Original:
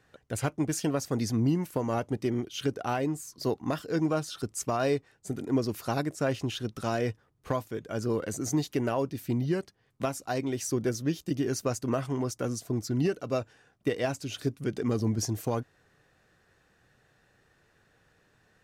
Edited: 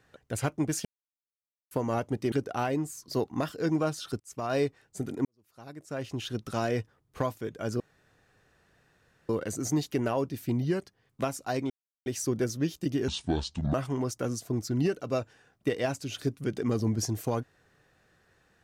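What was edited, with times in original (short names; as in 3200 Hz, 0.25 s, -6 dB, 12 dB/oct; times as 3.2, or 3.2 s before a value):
0.85–1.71 mute
2.32–2.62 cut
4.5–4.89 fade in
5.55–6.64 fade in quadratic
8.1 insert room tone 1.49 s
10.51 insert silence 0.36 s
11.53–11.94 speed 62%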